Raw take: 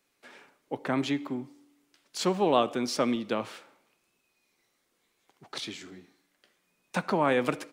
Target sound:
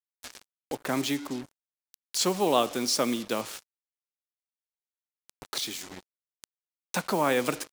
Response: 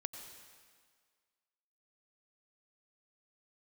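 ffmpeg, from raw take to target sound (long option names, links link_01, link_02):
-af "acrusher=bits=6:mix=0:aa=0.5,bass=frequency=250:gain=-2,treble=frequency=4000:gain=10,acompressor=mode=upward:threshold=-32dB:ratio=2.5"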